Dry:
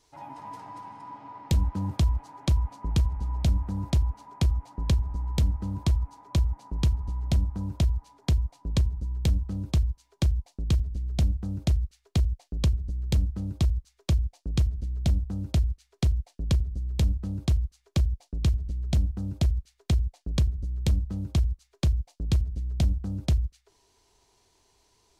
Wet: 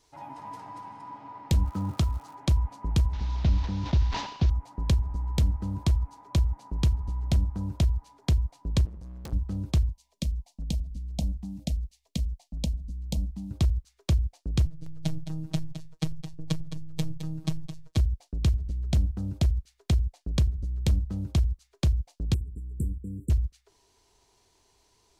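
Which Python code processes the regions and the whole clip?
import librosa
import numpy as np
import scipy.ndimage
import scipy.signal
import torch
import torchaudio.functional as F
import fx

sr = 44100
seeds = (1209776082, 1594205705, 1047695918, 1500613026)

y = fx.highpass(x, sr, hz=69.0, slope=12, at=(1.65, 2.33), fade=0.02)
y = fx.peak_eq(y, sr, hz=1300.0, db=9.5, octaves=0.2, at=(1.65, 2.33), fade=0.02)
y = fx.dmg_crackle(y, sr, seeds[0], per_s=240.0, level_db=-44.0, at=(1.65, 2.33), fade=0.02)
y = fx.chain(y, sr, fx.delta_mod(bps=32000, step_db=-41.0),
    fx.peak_eq(hz=3800.0, db=4.5, octaves=0.37),
    fx.sustainer(db_per_s=74.0), at=(3.13, 4.5))
y = fx.chain(y, sr, fx.overload_stage(gain_db=34.5),
    fx.low_shelf(hz=150.0, db=-6.0), at=(8.85, 9.33))
y = fx.chain(y, sr, fx.fixed_phaser(hz=380.0, stages=6),
    fx.filter_held_notch(hz=4.1, low_hz=340.0, high_hz=1600.0), at=(9.89, 13.51))
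y = fx.chain(y, sr, fx.robotise(hz=158.0),
    fx.echo_single(ms=214, db=-10.5), at=(14.65, 17.97))
y = fx.chain(y, sr, fx.brickwall_bandstop(low_hz=500.0, high_hz=7200.0),
    fx.low_shelf(hz=180.0, db=-7.5), at=(22.34, 23.3))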